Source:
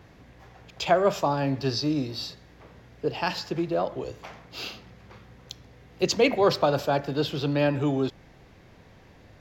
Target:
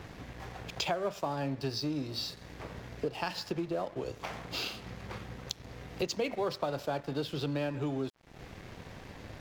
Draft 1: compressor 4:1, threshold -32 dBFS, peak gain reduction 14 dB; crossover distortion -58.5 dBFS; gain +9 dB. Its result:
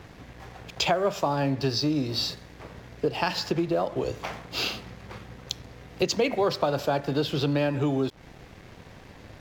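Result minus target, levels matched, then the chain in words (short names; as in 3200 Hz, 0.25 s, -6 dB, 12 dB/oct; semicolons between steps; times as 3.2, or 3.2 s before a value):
compressor: peak gain reduction -8 dB
compressor 4:1, threshold -42.5 dBFS, peak gain reduction 22 dB; crossover distortion -58.5 dBFS; gain +9 dB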